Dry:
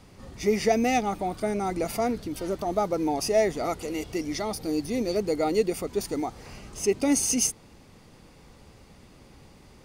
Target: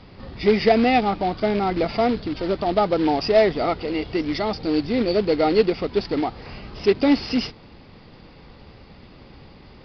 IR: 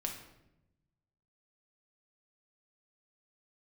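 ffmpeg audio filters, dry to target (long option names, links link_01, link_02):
-af "acontrast=58,acrusher=bits=3:mode=log:mix=0:aa=0.000001,aresample=11025,aresample=44100"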